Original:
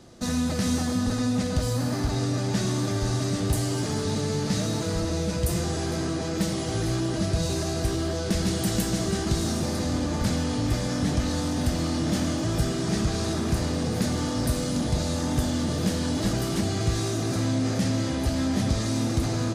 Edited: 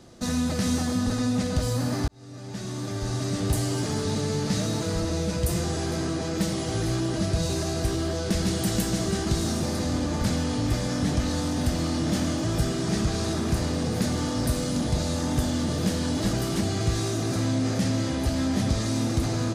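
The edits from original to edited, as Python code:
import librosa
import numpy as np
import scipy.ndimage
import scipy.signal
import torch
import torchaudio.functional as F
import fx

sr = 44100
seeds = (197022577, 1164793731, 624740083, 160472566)

y = fx.edit(x, sr, fx.fade_in_span(start_s=2.08, length_s=1.43), tone=tone)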